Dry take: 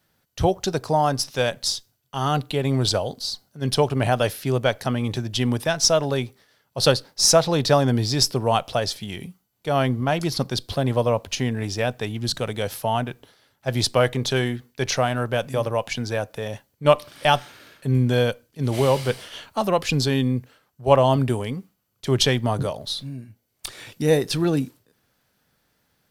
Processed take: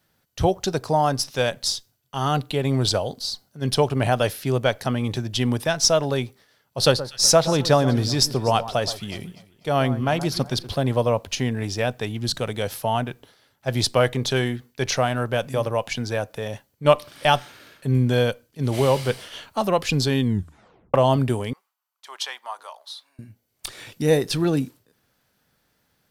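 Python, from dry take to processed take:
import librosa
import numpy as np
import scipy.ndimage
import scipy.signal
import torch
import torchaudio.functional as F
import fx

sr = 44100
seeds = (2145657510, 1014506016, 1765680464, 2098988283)

y = fx.echo_alternate(x, sr, ms=123, hz=1500.0, feedback_pct=54, wet_db=-13, at=(6.79, 10.7), fade=0.02)
y = fx.ladder_highpass(y, sr, hz=820.0, resonance_pct=50, at=(21.53, 23.19))
y = fx.edit(y, sr, fx.tape_stop(start_s=20.23, length_s=0.71), tone=tone)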